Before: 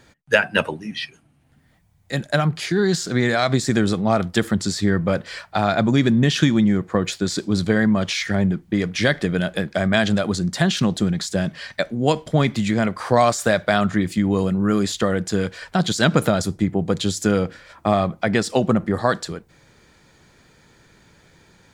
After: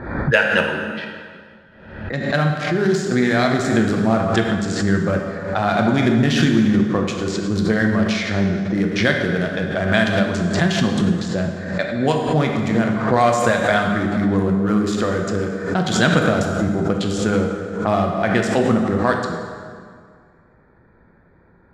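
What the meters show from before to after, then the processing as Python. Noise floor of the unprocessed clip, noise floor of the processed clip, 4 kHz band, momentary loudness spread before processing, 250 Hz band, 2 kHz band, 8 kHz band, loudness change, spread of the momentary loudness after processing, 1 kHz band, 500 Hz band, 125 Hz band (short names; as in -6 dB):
-58 dBFS, -53 dBFS, -1.0 dB, 7 LU, +2.0 dB, +3.5 dB, -3.0 dB, +1.5 dB, 8 LU, +2.5 dB, +2.0 dB, +1.0 dB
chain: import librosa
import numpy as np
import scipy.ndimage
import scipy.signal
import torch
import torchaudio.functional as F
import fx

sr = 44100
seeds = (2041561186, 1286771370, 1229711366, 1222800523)

y = fx.wiener(x, sr, points=15)
y = fx.env_lowpass(y, sr, base_hz=2000.0, full_db=-16.0)
y = fx.peak_eq(y, sr, hz=1600.0, db=3.5, octaves=0.83)
y = fx.rev_plate(y, sr, seeds[0], rt60_s=2.0, hf_ratio=0.75, predelay_ms=0, drr_db=1.0)
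y = fx.pre_swell(y, sr, db_per_s=64.0)
y = y * librosa.db_to_amplitude(-1.5)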